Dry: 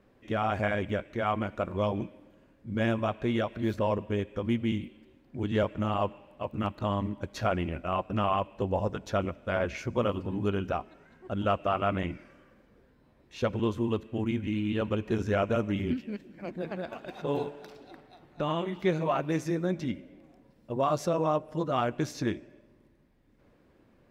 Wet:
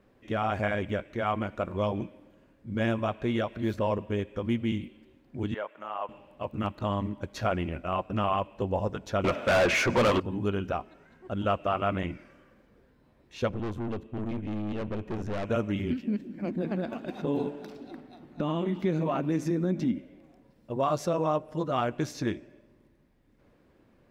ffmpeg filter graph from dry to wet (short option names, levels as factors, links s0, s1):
-filter_complex "[0:a]asettb=1/sr,asplit=3[s0][s1][s2];[s0]atrim=end=5.544[s3];[s1]atrim=start=5.54:end=6.09,asetpts=PTS-STARTPTS,afade=t=in:d=0.004:c=qsin,afade=t=out:st=0.546:d=0.004:c=qsin,acrossover=split=3300[s4][s5];[s5]acompressor=threshold=0.00141:ratio=4:attack=1:release=60[s6];[s4][s6]amix=inputs=2:normalize=0,highpass=820,equalizer=f=5700:t=o:w=2.2:g=-11.5[s7];[s2]atrim=start=6.086[s8];[s3][s7]acrossfade=d=0.004:c1=hsin:c2=qsin[s9];[s9][s8]acrossfade=d=0.004:c1=qsin:c2=hsin,asettb=1/sr,asplit=3[s10][s11][s12];[s10]atrim=end=9.244[s13];[s11]atrim=start=9.24:end=10.2,asetpts=PTS-STARTPTS,afade=t=in:d=0.004:c=qsin,afade=t=out:st=0.956:d=0.004:c=qsin,highpass=57,asplit=2[s14][s15];[s15]highpass=f=720:p=1,volume=28.2,asoftclip=type=tanh:threshold=0.168[s16];[s14][s16]amix=inputs=2:normalize=0,lowpass=f=3800:p=1,volume=0.501[s17];[s12]atrim=start=10.196[s18];[s13][s17]acrossfade=d=0.004:c1=hsin:c2=qsin[s19];[s19][s18]acrossfade=d=0.004:c1=qsin:c2=hsin,asettb=1/sr,asplit=3[s20][s21][s22];[s20]atrim=end=13.494[s23];[s21]atrim=start=13.49:end=15.45,asetpts=PTS-STARTPTS,afade=t=in:d=0.004:c=qsin,afade=t=out:st=1.956:d=0.004:c=qsin,tiltshelf=f=970:g=4,aeval=exprs='(tanh(31.6*val(0)+0.6)-tanh(0.6))/31.6':c=same[s24];[s22]atrim=start=15.446[s25];[s23][s24]acrossfade=d=0.004:c1=hsin:c2=qsin[s26];[s26][s25]acrossfade=d=0.004:c1=qsin:c2=hsin,asettb=1/sr,asplit=3[s27][s28][s29];[s27]atrim=end=16.034[s30];[s28]atrim=start=16.03:end=19.99,asetpts=PTS-STARTPTS,afade=t=in:d=0.004:c=qsin,afade=t=out:st=3.956:d=0.004:c=qsin,equalizer=f=240:t=o:w=1.1:g=12.5,acompressor=threshold=0.0562:ratio=2.5:attack=3.2:release=140:knee=1:detection=peak[s31];[s29]atrim=start=19.986[s32];[s30][s31]acrossfade=d=0.004:c1=hsin:c2=qsin[s33];[s33][s32]acrossfade=d=0.004:c1=qsin:c2=hsin"